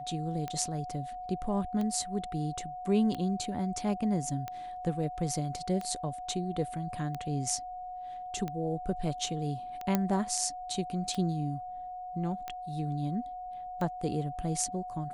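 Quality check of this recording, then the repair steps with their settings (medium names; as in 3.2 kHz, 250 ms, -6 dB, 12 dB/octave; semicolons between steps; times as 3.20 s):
tick 45 rpm -23 dBFS
whine 730 Hz -38 dBFS
9.95 s: pop -13 dBFS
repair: de-click; band-stop 730 Hz, Q 30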